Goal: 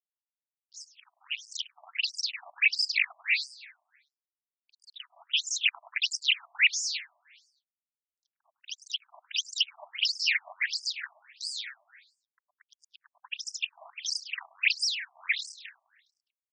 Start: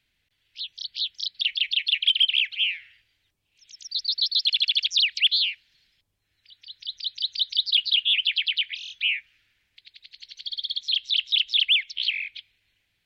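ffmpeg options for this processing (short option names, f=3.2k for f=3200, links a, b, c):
-filter_complex "[0:a]equalizer=f=980:w=0.54:g=15,aeval=exprs='max(val(0),0)':c=same,asplit=2[a][b];[b]acrusher=bits=3:mix=0:aa=0.000001,volume=-8dB[c];[a][c]amix=inputs=2:normalize=0,asetrate=34839,aresample=44100,aeval=exprs='val(0)*sin(2*PI*140*n/s)':c=same,aeval=exprs='sgn(val(0))*max(abs(val(0))-0.01,0)':c=same,asplit=2[d][e];[e]aecho=0:1:103|206|309|412|515|618:0.178|0.101|0.0578|0.0329|0.0188|0.0107[f];[d][f]amix=inputs=2:normalize=0,afftfilt=real='re*between(b*sr/1024,830*pow(6700/830,0.5+0.5*sin(2*PI*1.5*pts/sr))/1.41,830*pow(6700/830,0.5+0.5*sin(2*PI*1.5*pts/sr))*1.41)':imag='im*between(b*sr/1024,830*pow(6700/830,0.5+0.5*sin(2*PI*1.5*pts/sr))/1.41,830*pow(6700/830,0.5+0.5*sin(2*PI*1.5*pts/sr))*1.41)':win_size=1024:overlap=0.75"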